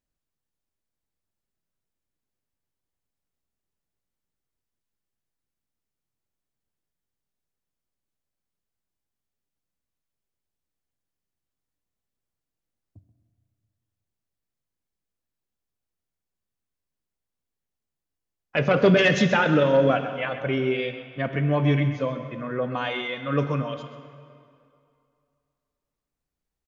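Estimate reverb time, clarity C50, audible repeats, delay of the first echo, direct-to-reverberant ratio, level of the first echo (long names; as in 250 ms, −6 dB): 2.4 s, 8.0 dB, 1, 131 ms, 7.0 dB, −13.0 dB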